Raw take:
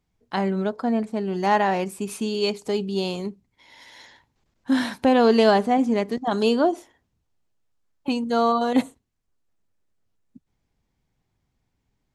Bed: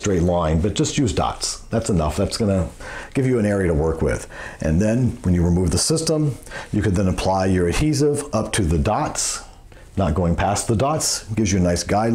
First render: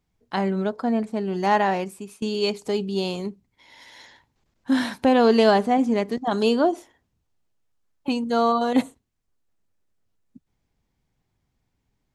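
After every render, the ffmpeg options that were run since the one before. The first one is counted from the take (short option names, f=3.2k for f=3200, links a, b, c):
-filter_complex "[0:a]asplit=2[a][b];[a]atrim=end=2.22,asetpts=PTS-STARTPTS,afade=t=out:st=1.69:d=0.53:silence=0.105925[c];[b]atrim=start=2.22,asetpts=PTS-STARTPTS,afade=t=in:d=0.004:c=hsin:silence=0.105925[d];[c][d]concat=n=2:v=0:a=1"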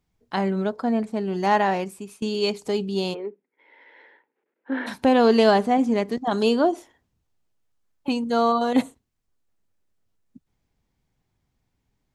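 -filter_complex "[0:a]asplit=3[a][b][c];[a]afade=t=out:st=3.13:d=0.02[d];[b]highpass=f=320:w=0.5412,highpass=f=320:w=1.3066,equalizer=f=450:t=q:w=4:g=8,equalizer=f=690:t=q:w=4:g=-7,equalizer=f=1.1k:t=q:w=4:g=-8,lowpass=f=2.2k:w=0.5412,lowpass=f=2.2k:w=1.3066,afade=t=in:st=3.13:d=0.02,afade=t=out:st=4.86:d=0.02[e];[c]afade=t=in:st=4.86:d=0.02[f];[d][e][f]amix=inputs=3:normalize=0"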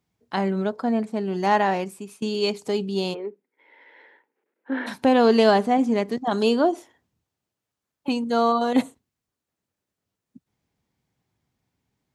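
-af "highpass=91"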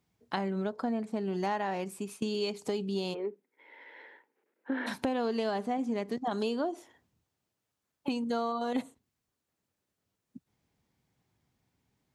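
-af "acompressor=threshold=-30dB:ratio=5"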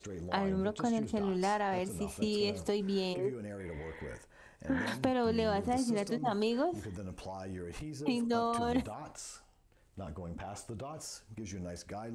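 -filter_complex "[1:a]volume=-24dB[a];[0:a][a]amix=inputs=2:normalize=0"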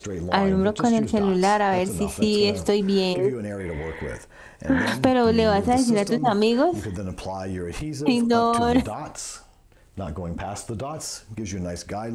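-af "volume=12dB"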